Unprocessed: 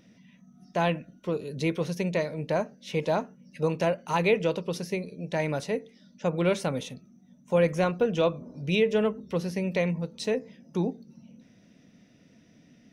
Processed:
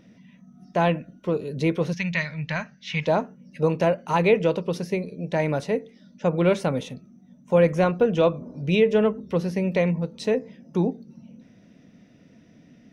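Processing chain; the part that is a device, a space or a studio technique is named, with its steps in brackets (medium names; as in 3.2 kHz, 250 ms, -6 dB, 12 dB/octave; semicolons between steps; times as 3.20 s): behind a face mask (treble shelf 3 kHz -8 dB); 1.93–3.07 s: FFT filter 160 Hz 0 dB, 390 Hz -22 dB, 1.9 kHz +9 dB, 6.3 kHz +3 dB, 10 kHz -16 dB; trim +5 dB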